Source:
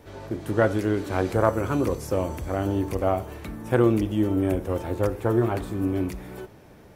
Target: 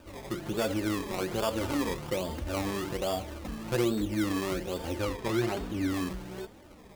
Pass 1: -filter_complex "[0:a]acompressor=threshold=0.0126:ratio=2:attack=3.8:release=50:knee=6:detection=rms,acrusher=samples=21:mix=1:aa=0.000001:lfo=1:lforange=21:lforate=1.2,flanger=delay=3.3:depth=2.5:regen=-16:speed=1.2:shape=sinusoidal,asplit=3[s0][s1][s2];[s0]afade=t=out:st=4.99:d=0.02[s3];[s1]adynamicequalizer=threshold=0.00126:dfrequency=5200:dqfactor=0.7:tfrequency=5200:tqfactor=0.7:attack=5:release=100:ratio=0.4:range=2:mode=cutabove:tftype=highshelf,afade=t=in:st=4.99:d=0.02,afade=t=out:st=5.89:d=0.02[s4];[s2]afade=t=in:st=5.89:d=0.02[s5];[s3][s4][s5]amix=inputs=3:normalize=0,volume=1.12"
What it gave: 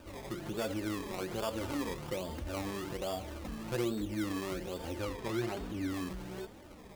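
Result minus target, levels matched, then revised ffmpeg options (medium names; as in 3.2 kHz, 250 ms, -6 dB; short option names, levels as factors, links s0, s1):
compression: peak gain reduction +6 dB
-filter_complex "[0:a]acompressor=threshold=0.0501:ratio=2:attack=3.8:release=50:knee=6:detection=rms,acrusher=samples=21:mix=1:aa=0.000001:lfo=1:lforange=21:lforate=1.2,flanger=delay=3.3:depth=2.5:regen=-16:speed=1.2:shape=sinusoidal,asplit=3[s0][s1][s2];[s0]afade=t=out:st=4.99:d=0.02[s3];[s1]adynamicequalizer=threshold=0.00126:dfrequency=5200:dqfactor=0.7:tfrequency=5200:tqfactor=0.7:attack=5:release=100:ratio=0.4:range=2:mode=cutabove:tftype=highshelf,afade=t=in:st=4.99:d=0.02,afade=t=out:st=5.89:d=0.02[s4];[s2]afade=t=in:st=5.89:d=0.02[s5];[s3][s4][s5]amix=inputs=3:normalize=0,volume=1.12"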